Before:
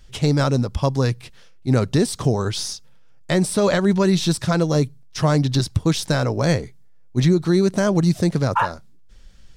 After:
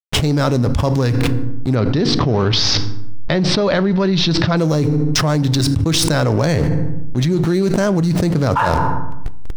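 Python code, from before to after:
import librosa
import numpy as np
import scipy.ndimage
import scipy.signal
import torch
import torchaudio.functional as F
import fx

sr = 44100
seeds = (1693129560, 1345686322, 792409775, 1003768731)

y = fx.backlash(x, sr, play_db=-30.0)
y = fx.steep_lowpass(y, sr, hz=5100.0, slope=36, at=(1.75, 4.57))
y = fx.rev_fdn(y, sr, rt60_s=0.68, lf_ratio=1.4, hf_ratio=0.65, size_ms=20.0, drr_db=16.5)
y = fx.env_flatten(y, sr, amount_pct=100)
y = y * 10.0 ** (-2.5 / 20.0)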